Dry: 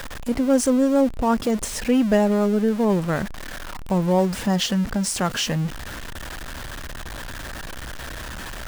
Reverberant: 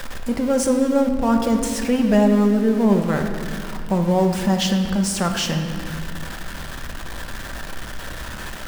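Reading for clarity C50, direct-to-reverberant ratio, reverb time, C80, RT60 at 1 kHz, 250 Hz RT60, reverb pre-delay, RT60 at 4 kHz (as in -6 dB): 6.0 dB, 4.0 dB, 2.3 s, 7.0 dB, 2.0 s, 3.4 s, 4 ms, 1.5 s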